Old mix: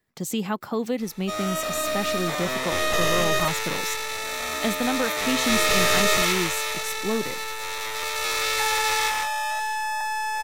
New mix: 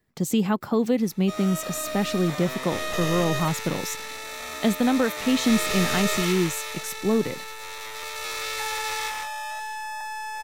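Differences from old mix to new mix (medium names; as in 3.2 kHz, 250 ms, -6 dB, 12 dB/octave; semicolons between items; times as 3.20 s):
speech: add bass shelf 450 Hz +7 dB; background -6.0 dB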